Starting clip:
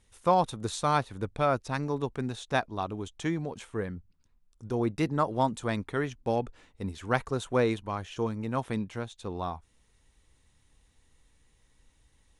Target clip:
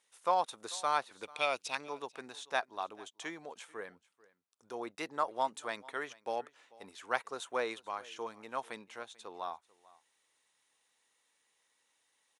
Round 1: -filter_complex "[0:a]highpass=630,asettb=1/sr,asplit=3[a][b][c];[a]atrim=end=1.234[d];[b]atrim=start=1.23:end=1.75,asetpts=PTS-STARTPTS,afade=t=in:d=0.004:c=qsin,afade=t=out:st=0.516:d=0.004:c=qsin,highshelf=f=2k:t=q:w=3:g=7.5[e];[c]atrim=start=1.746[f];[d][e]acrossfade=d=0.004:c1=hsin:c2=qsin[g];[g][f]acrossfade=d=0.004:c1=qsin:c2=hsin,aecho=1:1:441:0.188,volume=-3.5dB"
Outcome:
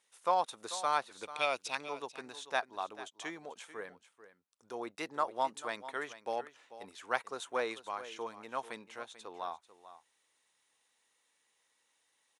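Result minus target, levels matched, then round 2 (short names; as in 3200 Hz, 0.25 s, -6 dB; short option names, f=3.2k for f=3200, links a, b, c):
echo-to-direct +8 dB
-filter_complex "[0:a]highpass=630,asettb=1/sr,asplit=3[a][b][c];[a]atrim=end=1.234[d];[b]atrim=start=1.23:end=1.75,asetpts=PTS-STARTPTS,afade=t=in:d=0.004:c=qsin,afade=t=out:st=0.516:d=0.004:c=qsin,highshelf=f=2k:t=q:w=3:g=7.5[e];[c]atrim=start=1.746[f];[d][e]acrossfade=d=0.004:c1=hsin:c2=qsin[g];[g][f]acrossfade=d=0.004:c1=qsin:c2=hsin,aecho=1:1:441:0.075,volume=-3.5dB"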